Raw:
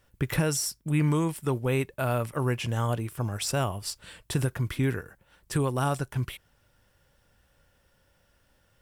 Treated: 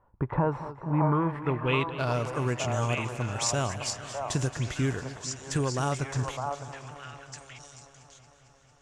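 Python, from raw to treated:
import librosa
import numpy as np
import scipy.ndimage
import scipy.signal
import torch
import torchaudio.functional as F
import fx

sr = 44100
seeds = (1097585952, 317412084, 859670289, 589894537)

p1 = fx.sample_hold(x, sr, seeds[0], rate_hz=9700.0, jitter_pct=0)
p2 = x + F.gain(torch.from_numpy(p1), -8.5).numpy()
p3 = fx.filter_sweep_lowpass(p2, sr, from_hz=970.0, to_hz=6700.0, start_s=0.9, end_s=2.3, q=5.4)
p4 = fx.echo_stepped(p3, sr, ms=607, hz=820.0, octaves=1.4, feedback_pct=70, wet_db=0.0)
p5 = fx.echo_warbled(p4, sr, ms=226, feedback_pct=76, rate_hz=2.8, cents=74, wet_db=-15.0)
y = F.gain(torch.from_numpy(p5), -4.5).numpy()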